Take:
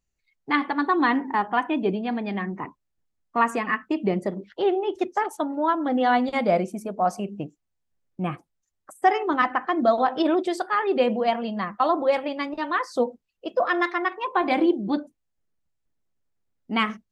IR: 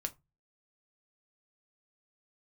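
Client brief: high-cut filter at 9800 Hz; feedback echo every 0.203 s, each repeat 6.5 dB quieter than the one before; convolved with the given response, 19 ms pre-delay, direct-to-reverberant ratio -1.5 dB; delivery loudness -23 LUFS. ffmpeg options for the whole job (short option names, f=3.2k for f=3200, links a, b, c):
-filter_complex "[0:a]lowpass=9.8k,aecho=1:1:203|406|609|812|1015|1218:0.473|0.222|0.105|0.0491|0.0231|0.0109,asplit=2[a][b];[1:a]atrim=start_sample=2205,adelay=19[c];[b][c]afir=irnorm=-1:irlink=0,volume=1.5dB[d];[a][d]amix=inputs=2:normalize=0,volume=-3dB"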